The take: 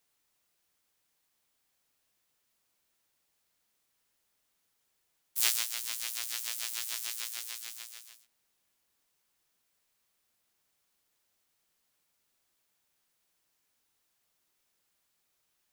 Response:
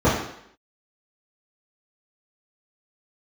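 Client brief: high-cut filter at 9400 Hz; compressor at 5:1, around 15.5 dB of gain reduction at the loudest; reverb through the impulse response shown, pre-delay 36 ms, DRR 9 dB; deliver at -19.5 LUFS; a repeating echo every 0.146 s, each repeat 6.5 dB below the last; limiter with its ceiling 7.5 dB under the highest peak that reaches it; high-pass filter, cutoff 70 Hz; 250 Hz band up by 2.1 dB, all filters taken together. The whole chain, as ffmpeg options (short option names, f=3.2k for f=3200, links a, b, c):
-filter_complex "[0:a]highpass=70,lowpass=9.4k,equalizer=f=250:t=o:g=3,acompressor=threshold=-41dB:ratio=5,alimiter=level_in=4dB:limit=-24dB:level=0:latency=1,volume=-4dB,aecho=1:1:146|292|438|584|730|876:0.473|0.222|0.105|0.0491|0.0231|0.0109,asplit=2[a][b];[1:a]atrim=start_sample=2205,adelay=36[c];[b][c]afir=irnorm=-1:irlink=0,volume=-30.5dB[d];[a][d]amix=inputs=2:normalize=0,volume=27.5dB"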